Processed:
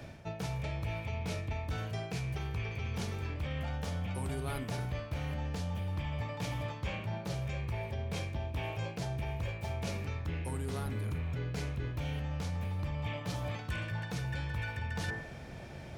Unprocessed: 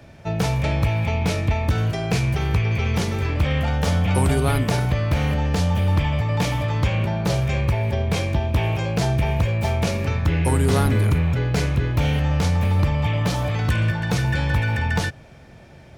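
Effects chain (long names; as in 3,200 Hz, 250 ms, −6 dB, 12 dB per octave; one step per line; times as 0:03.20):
hum removal 55.46 Hz, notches 39
reversed playback
downward compressor 6 to 1, threshold −35 dBFS, peak gain reduction 19 dB
reversed playback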